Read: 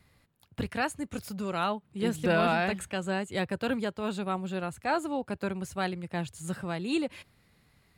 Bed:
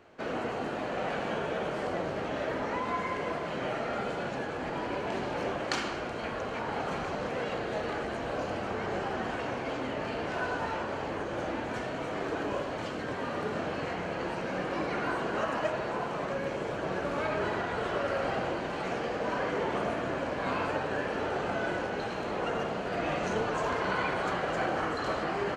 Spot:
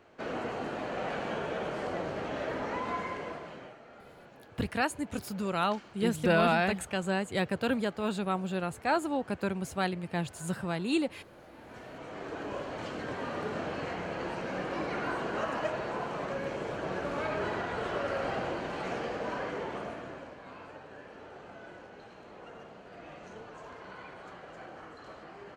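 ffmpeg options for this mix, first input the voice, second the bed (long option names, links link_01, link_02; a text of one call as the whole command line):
ffmpeg -i stem1.wav -i stem2.wav -filter_complex "[0:a]adelay=4000,volume=0.5dB[link_01];[1:a]volume=15.5dB,afade=type=out:start_time=2.92:duration=0.84:silence=0.133352,afade=type=in:start_time=11.51:duration=1.48:silence=0.133352,afade=type=out:start_time=19.01:duration=1.42:silence=0.188365[link_02];[link_01][link_02]amix=inputs=2:normalize=0" out.wav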